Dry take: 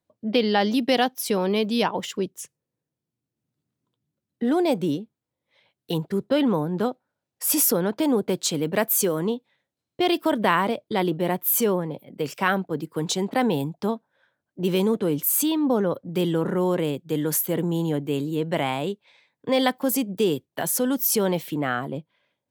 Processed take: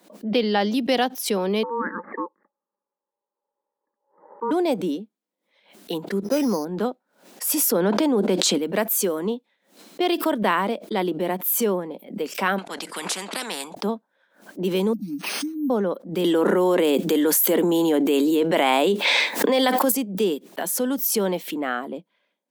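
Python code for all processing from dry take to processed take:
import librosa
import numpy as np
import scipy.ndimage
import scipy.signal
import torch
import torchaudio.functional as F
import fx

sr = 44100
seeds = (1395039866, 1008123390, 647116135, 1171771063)

y = fx.chain(x, sr, fx.steep_lowpass(hz=1300.0, slope=96),
    fx.ring_mod(carrier_hz=700.0), at=(1.63, 4.51))
y = fx.chain(y, sr, fx.lowpass(hz=2200.0, slope=6),
    fx.resample_bad(factor=8, down='none', up='hold'), at=(6.24, 6.65))
y = fx.chain(y, sr, fx.high_shelf(hz=12000.0, db=-12.0),
    fx.env_flatten(amount_pct=100), at=(7.72, 8.58))
y = fx.chain(y, sr, fx.lowpass(hz=10000.0, slope=24),
    fx.spectral_comp(ratio=4.0), at=(12.58, 13.75))
y = fx.chain(y, sr, fx.brickwall_bandstop(low_hz=310.0, high_hz=8000.0),
    fx.high_shelf(hz=9600.0, db=-8.5),
    fx.resample_bad(factor=3, down='none', up='hold'), at=(14.93, 15.7))
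y = fx.chain(y, sr, fx.highpass(hz=250.0, slope=12),
    fx.high_shelf(hz=5100.0, db=3.0),
    fx.env_flatten(amount_pct=100), at=(16.24, 19.92))
y = scipy.signal.sosfilt(scipy.signal.ellip(4, 1.0, 40, 190.0, 'highpass', fs=sr, output='sos'), y)
y = fx.pre_swell(y, sr, db_per_s=130.0)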